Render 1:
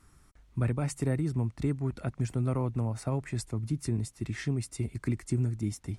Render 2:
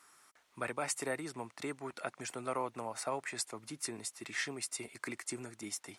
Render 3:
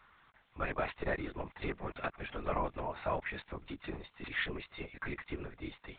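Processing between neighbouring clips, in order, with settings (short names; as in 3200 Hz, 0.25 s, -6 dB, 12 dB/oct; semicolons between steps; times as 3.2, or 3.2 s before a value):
HPF 680 Hz 12 dB/oct; gain +4.5 dB
LPC vocoder at 8 kHz whisper; gain +2.5 dB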